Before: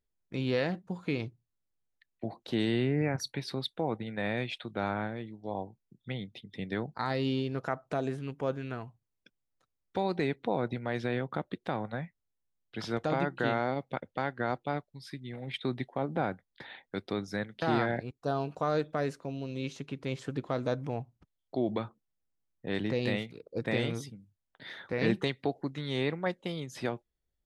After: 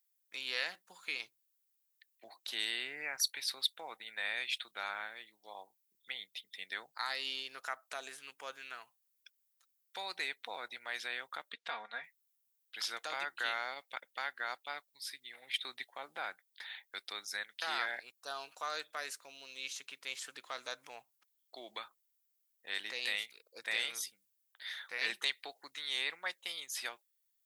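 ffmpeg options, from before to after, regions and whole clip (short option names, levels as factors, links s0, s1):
-filter_complex "[0:a]asettb=1/sr,asplit=3[s0][s1][s2];[s0]atrim=end=11.524[s3];[s1]atrim=start=11.52:end=12.04,asetpts=PTS-STARTPTS,afade=t=in:d=0.004:c=qsin,afade=t=out:st=0.516:d=0.004:c=qsin,lowpass=4600,aecho=1:1:4.3:0.76,atrim=end_sample=22932[s4];[s2]atrim=start=12.036[s5];[s3][s4]acrossfade=d=0.004:c1=hsin:c2=qsin[s6];[s6][s5]acrossfade=d=0.004:c1=qsin:c2=hsin,highpass=1500,aemphasis=mode=production:type=50fm,volume=1.12"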